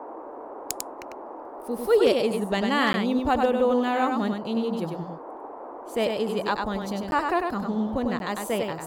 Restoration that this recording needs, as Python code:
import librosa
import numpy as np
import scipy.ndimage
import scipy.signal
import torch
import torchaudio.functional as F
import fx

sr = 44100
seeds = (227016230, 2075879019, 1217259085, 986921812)

y = fx.fix_declip(x, sr, threshold_db=-11.0)
y = fx.fix_interpolate(y, sr, at_s=(2.93, 7.11, 8.19), length_ms=11.0)
y = fx.noise_reduce(y, sr, print_start_s=5.16, print_end_s=5.66, reduce_db=30.0)
y = fx.fix_echo_inverse(y, sr, delay_ms=98, level_db=-4.5)